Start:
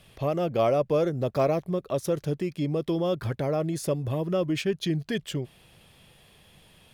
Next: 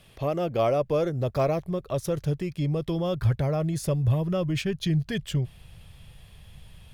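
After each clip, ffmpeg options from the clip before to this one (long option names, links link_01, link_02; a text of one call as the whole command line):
ffmpeg -i in.wav -af "asubboost=boost=9:cutoff=100" out.wav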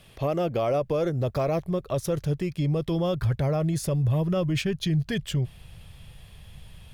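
ffmpeg -i in.wav -af "alimiter=limit=-20dB:level=0:latency=1:release=25,volume=2dB" out.wav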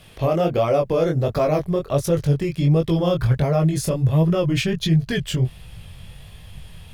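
ffmpeg -i in.wav -af "flanger=delay=18:depth=6.5:speed=1.4,volume=9dB" out.wav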